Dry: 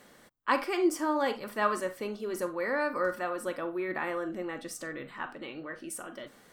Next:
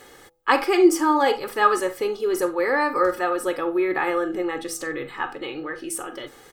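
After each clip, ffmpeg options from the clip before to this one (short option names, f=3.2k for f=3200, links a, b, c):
-af "aecho=1:1:2.4:0.72,bandreject=f=166:t=h:w=4,bandreject=f=332:t=h:w=4,bandreject=f=498:t=h:w=4,bandreject=f=664:t=h:w=4,bandreject=f=830:t=h:w=4,volume=8dB"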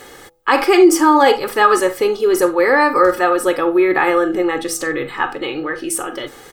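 -af "alimiter=level_in=9.5dB:limit=-1dB:release=50:level=0:latency=1,volume=-1dB"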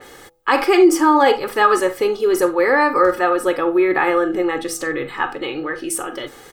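-af "adynamicequalizer=threshold=0.0282:dfrequency=3800:dqfactor=0.7:tfrequency=3800:tqfactor=0.7:attack=5:release=100:ratio=0.375:range=2.5:mode=cutabove:tftype=highshelf,volume=-2dB"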